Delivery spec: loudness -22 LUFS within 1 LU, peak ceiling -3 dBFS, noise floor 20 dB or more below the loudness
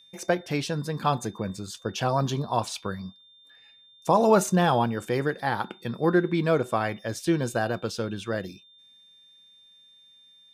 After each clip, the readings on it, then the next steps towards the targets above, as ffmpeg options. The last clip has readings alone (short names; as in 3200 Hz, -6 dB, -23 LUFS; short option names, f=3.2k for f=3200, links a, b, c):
steady tone 3600 Hz; tone level -53 dBFS; loudness -26.5 LUFS; peak -9.0 dBFS; loudness target -22.0 LUFS
-> -af "bandreject=f=3.6k:w=30"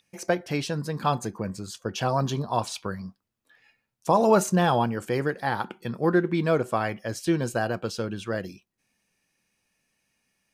steady tone none; loudness -26.5 LUFS; peak -9.0 dBFS; loudness target -22.0 LUFS
-> -af "volume=4.5dB"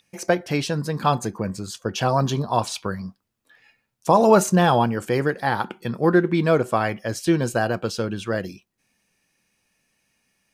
loudness -22.0 LUFS; peak -4.5 dBFS; noise floor -76 dBFS